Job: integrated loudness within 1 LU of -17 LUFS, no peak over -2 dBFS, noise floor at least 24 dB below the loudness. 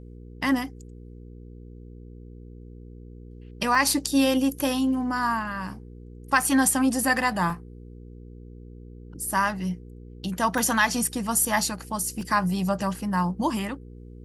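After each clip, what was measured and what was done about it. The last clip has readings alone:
dropouts 5; longest dropout 1.6 ms; hum 60 Hz; harmonics up to 480 Hz; hum level -41 dBFS; loudness -24.5 LUFS; peak -7.5 dBFS; loudness target -17.0 LUFS
-> interpolate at 3.75/6.42/7.5/10.58/12.21, 1.6 ms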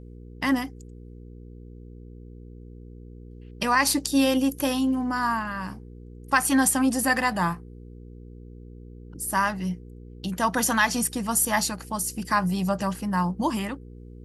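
dropouts 0; hum 60 Hz; harmonics up to 480 Hz; hum level -41 dBFS
-> de-hum 60 Hz, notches 8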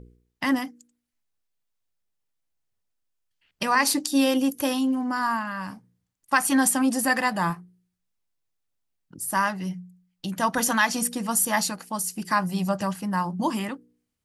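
hum none; loudness -24.5 LUFS; peak -7.5 dBFS; loudness target -17.0 LUFS
-> gain +7.5 dB; limiter -2 dBFS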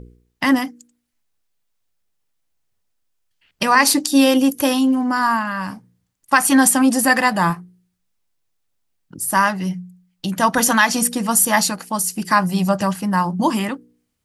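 loudness -17.5 LUFS; peak -2.0 dBFS; noise floor -72 dBFS

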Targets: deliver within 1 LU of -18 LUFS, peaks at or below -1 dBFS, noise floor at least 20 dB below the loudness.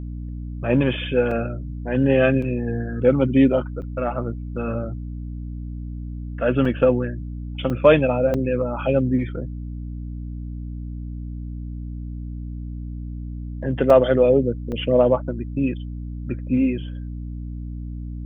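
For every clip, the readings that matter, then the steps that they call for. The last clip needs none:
dropouts 8; longest dropout 3.6 ms; hum 60 Hz; harmonics up to 300 Hz; hum level -28 dBFS; loudness -21.0 LUFS; peak -2.5 dBFS; loudness target -18.0 LUFS
-> interpolate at 1.31/2.42/3.82/6.65/7.7/8.34/13.9/14.72, 3.6 ms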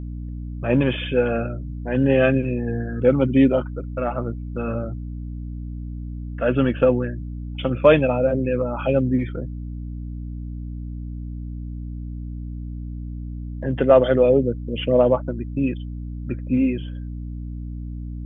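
dropouts 0; hum 60 Hz; harmonics up to 300 Hz; hum level -28 dBFS
-> notches 60/120/180/240/300 Hz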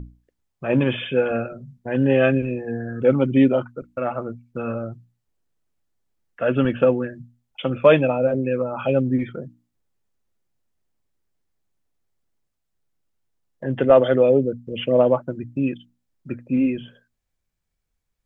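hum none; loudness -21.0 LUFS; peak -3.0 dBFS; loudness target -18.0 LUFS
-> gain +3 dB; limiter -1 dBFS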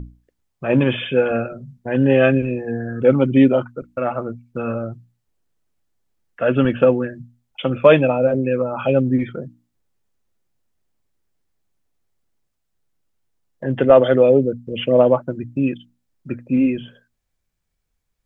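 loudness -18.0 LUFS; peak -1.0 dBFS; noise floor -74 dBFS

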